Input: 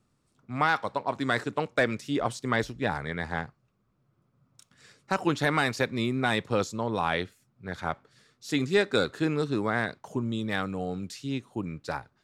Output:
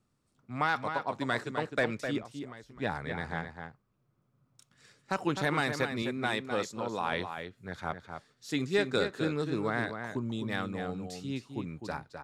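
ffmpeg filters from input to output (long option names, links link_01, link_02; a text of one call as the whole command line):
ffmpeg -i in.wav -filter_complex "[0:a]asettb=1/sr,asplit=3[link_01][link_02][link_03];[link_01]atrim=end=2.184[link_04];[link_02]atrim=start=2.18:end=2.77,asetpts=PTS-STARTPTS,afade=type=in:duration=0.004:curve=qsin,afade=type=out:start_time=0.586:duration=0.004:curve=qsin,acompressor=threshold=-39dB:ratio=12[link_05];[link_03]atrim=start=2.766[link_06];[link_04][link_05]acrossfade=duration=0.004:curve1=hsin:curve2=qsin[link_07];[link_07][link_06]acrossfade=duration=0.004:curve1=qsin:curve2=hsin,asettb=1/sr,asplit=3[link_08][link_09][link_10];[link_08]atrim=end=6.024[link_11];[link_09]atrim=start=6.02:end=7.12,asetpts=PTS-STARTPTS,afade=type=in:duration=0.004:curve=qsin,afade=type=out:start_time=1.096:duration=0.004:curve=qsin,highpass=frequency=250:poles=1[link_12];[link_10]atrim=start=7.116[link_13];[link_11][link_12]acrossfade=duration=0.004:curve1=hsin:curve2=qsin[link_14];[link_14][link_13]acrossfade=duration=0.004:curve1=qsin:curve2=hsin,asplit=2[link_15][link_16];[link_16]adelay=256.6,volume=-7dB,highshelf=frequency=4000:gain=-5.77[link_17];[link_15][link_17]amix=inputs=2:normalize=0,volume=-4.5dB" out.wav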